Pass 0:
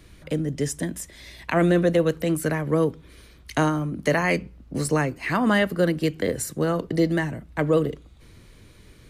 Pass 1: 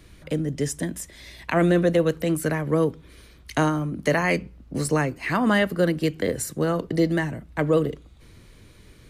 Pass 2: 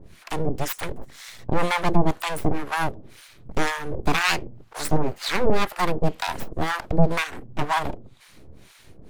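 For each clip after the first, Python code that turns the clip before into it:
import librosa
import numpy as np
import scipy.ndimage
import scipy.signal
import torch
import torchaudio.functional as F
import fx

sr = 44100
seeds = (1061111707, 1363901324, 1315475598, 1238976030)

y1 = x
y2 = np.abs(y1)
y2 = fx.harmonic_tremolo(y2, sr, hz=2.0, depth_pct=100, crossover_hz=800.0)
y2 = y2 * librosa.db_to_amplitude(7.5)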